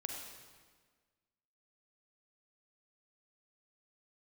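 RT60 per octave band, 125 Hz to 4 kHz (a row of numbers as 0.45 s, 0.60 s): 1.6 s, 1.7 s, 1.6 s, 1.5 s, 1.4 s, 1.3 s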